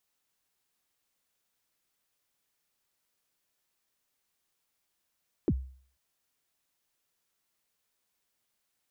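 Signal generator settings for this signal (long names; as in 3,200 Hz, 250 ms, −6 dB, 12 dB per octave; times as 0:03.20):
synth kick length 0.49 s, from 420 Hz, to 65 Hz, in 51 ms, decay 0.49 s, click off, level −20 dB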